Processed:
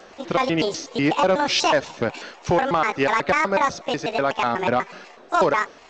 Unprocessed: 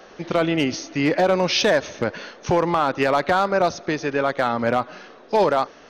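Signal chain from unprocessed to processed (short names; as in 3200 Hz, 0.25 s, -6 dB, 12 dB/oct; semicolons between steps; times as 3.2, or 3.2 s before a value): trilling pitch shifter +8 st, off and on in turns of 0.123 s; G.722 64 kbps 16000 Hz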